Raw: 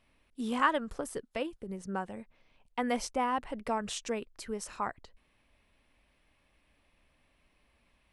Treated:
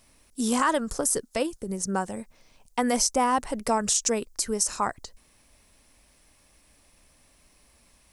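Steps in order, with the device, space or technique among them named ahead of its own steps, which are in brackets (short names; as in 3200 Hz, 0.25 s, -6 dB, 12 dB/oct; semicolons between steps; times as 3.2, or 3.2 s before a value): over-bright horn tweeter (resonant high shelf 4300 Hz +12.5 dB, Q 1.5; limiter -20.5 dBFS, peak gain reduction 9.5 dB); gain +8 dB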